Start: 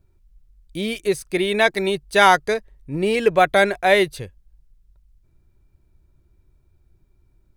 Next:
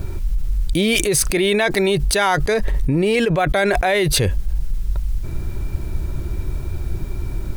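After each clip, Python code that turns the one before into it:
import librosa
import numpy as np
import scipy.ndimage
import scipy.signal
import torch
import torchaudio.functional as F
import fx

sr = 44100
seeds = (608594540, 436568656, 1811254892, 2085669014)

y = fx.env_flatten(x, sr, amount_pct=100)
y = F.gain(torch.from_numpy(y), -5.5).numpy()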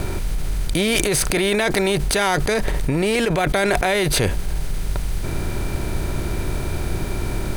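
y = fx.bin_compress(x, sr, power=0.6)
y = F.gain(torch.from_numpy(y), -4.5).numpy()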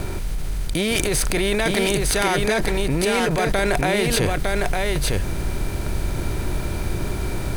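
y = x + 10.0 ** (-3.0 / 20.0) * np.pad(x, (int(906 * sr / 1000.0), 0))[:len(x)]
y = F.gain(torch.from_numpy(y), -2.5).numpy()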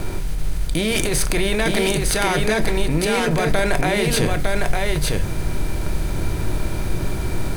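y = fx.room_shoebox(x, sr, seeds[0], volume_m3=230.0, walls='furnished', distance_m=0.59)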